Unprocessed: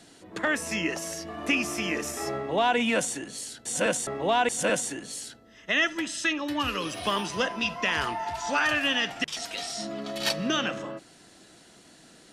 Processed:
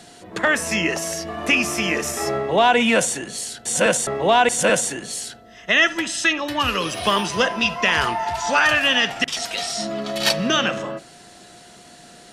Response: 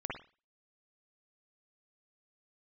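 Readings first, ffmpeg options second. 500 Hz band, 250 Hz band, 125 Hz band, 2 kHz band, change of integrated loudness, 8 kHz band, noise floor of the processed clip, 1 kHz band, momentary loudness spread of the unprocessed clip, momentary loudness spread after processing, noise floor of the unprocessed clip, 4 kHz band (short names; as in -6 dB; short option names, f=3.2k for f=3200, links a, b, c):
+8.0 dB, +5.5 dB, +8.0 dB, +8.0 dB, +8.0 dB, +8.0 dB, -46 dBFS, +8.0 dB, 11 LU, 10 LU, -54 dBFS, +8.0 dB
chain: -filter_complex "[0:a]equalizer=f=290:t=o:w=0.24:g=-7.5,aeval=exprs='val(0)+0.00141*sin(2*PI*710*n/s)':c=same,asplit=2[a][b];[1:a]atrim=start_sample=2205[c];[b][c]afir=irnorm=-1:irlink=0,volume=-19dB[d];[a][d]amix=inputs=2:normalize=0,volume=7.5dB"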